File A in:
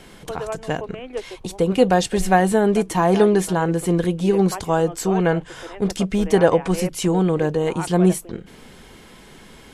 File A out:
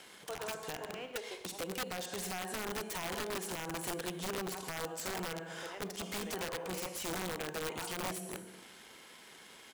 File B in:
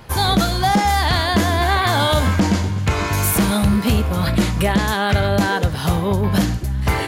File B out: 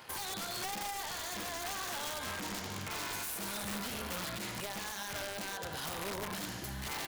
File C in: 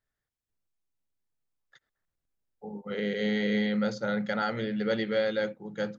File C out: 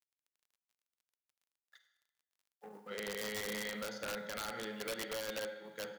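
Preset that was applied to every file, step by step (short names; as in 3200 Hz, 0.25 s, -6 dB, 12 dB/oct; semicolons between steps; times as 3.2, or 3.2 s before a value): G.711 law mismatch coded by A; HPF 620 Hz 6 dB/oct; on a send: feedback echo 78 ms, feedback 50%, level -19 dB; on the sum: Schroeder reverb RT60 0.88 s, combs from 33 ms, DRR 8.5 dB; compressor 5:1, threshold -31 dBFS; limiter -25 dBFS; wrapped overs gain 28 dB; crackle 22/s -65 dBFS; mismatched tape noise reduction encoder only; gain -4 dB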